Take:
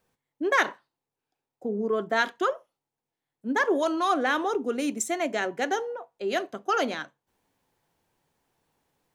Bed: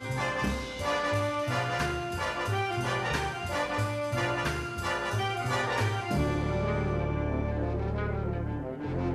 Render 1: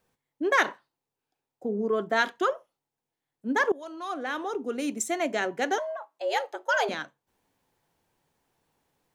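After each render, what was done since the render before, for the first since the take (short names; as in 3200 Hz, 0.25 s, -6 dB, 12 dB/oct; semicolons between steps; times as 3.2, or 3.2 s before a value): 3.72–5.19 fade in, from -20.5 dB; 5.78–6.89 frequency shift +160 Hz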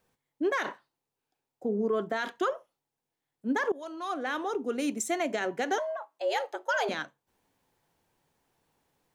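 limiter -20 dBFS, peak gain reduction 11 dB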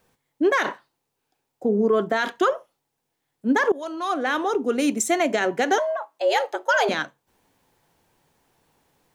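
gain +8.5 dB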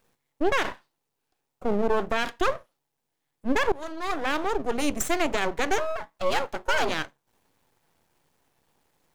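half-wave rectifier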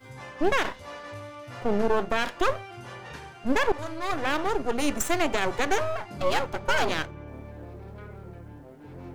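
add bed -11.5 dB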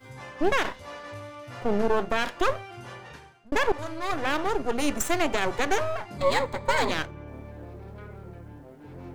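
2.9–3.52 fade out; 6.18–6.91 ripple EQ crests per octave 1, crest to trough 10 dB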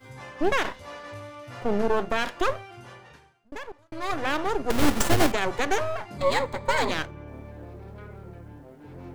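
2.36–3.92 fade out; 4.7–5.32 half-waves squared off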